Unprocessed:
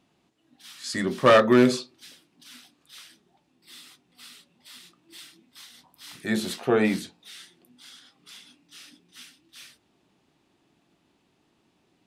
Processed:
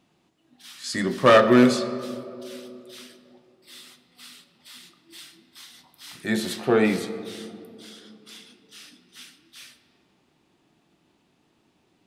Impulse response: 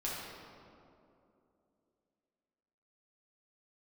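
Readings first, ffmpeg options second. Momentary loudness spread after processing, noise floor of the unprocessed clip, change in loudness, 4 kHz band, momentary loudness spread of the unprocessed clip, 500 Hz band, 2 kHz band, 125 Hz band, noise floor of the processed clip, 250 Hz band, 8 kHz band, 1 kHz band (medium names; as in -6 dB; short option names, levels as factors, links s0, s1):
23 LU, -69 dBFS, +1.0 dB, +1.5 dB, 18 LU, +2.0 dB, +2.0 dB, +1.5 dB, -67 dBFS, +2.5 dB, +1.5 dB, +2.0 dB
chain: -filter_complex "[0:a]asplit=2[s0][s1];[1:a]atrim=start_sample=2205[s2];[s1][s2]afir=irnorm=-1:irlink=0,volume=0.282[s3];[s0][s3]amix=inputs=2:normalize=0"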